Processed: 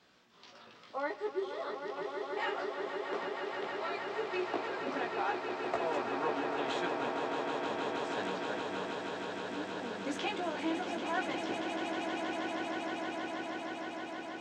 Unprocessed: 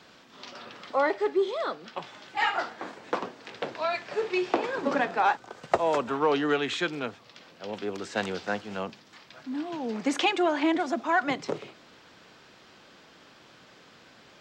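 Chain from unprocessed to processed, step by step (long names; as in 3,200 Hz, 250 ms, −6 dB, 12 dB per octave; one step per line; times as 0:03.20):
0:06.30–0:06.72: compressor whose output falls as the input rises −31 dBFS
chorus effect 0.71 Hz, delay 16 ms, depth 2.4 ms
echo that builds up and dies away 158 ms, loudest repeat 8, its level −8 dB
level −8.5 dB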